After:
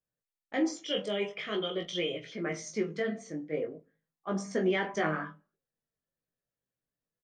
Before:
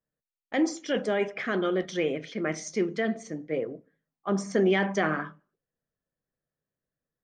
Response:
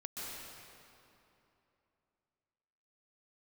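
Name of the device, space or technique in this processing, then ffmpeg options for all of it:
double-tracked vocal: -filter_complex "[0:a]asplit=2[s0][s1];[s1]adelay=24,volume=0.316[s2];[s0][s2]amix=inputs=2:normalize=0,flanger=delay=16.5:depth=3.9:speed=0.45,asettb=1/sr,asplit=3[s3][s4][s5];[s3]atrim=end=0.844[s6];[s4]atrim=start=0.84:end=2.24,asetpts=PTS-STARTPTS,afade=t=in:d=0.004:c=qsin,afade=t=out:st=1.396:d=0.004:c=qsin,equalizer=f=250:t=o:w=0.33:g=-11,equalizer=f=800:t=o:w=0.33:g=-6,equalizer=f=1600:t=o:w=0.33:g=-10,equalizer=f=3150:t=o:w=0.33:g=12[s7];[s5]atrim=start=2.236[s8];[s6][s7]acrossfade=d=0.004:c1=hsin:c2=qsin[s9];[s9][s8]acrossfade=d=0.004:c1=qsin:c2=hsin,volume=0.841"

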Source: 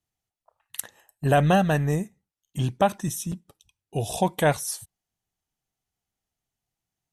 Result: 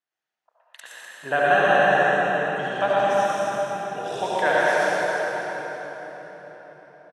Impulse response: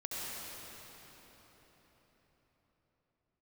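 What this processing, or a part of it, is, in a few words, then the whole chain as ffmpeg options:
station announcement: -filter_complex "[0:a]highpass=450,lowpass=4400,equalizer=f=1600:t=o:w=0.52:g=8.5,aecho=1:1:116.6|250.7:0.562|0.355[s0];[1:a]atrim=start_sample=2205[s1];[s0][s1]afir=irnorm=-1:irlink=0,volume=1.12"

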